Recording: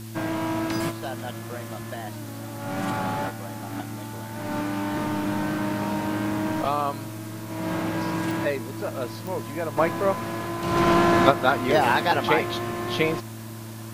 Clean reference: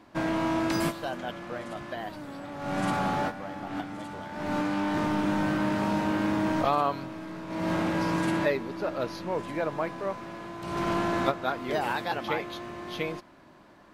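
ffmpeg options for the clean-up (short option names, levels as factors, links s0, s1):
-af "adeclick=t=4,bandreject=f=111.1:t=h:w=4,bandreject=f=222.2:t=h:w=4,bandreject=f=333.3:t=h:w=4,afwtdn=0.005,asetnsamples=n=441:p=0,asendcmd='9.77 volume volume -9dB',volume=1"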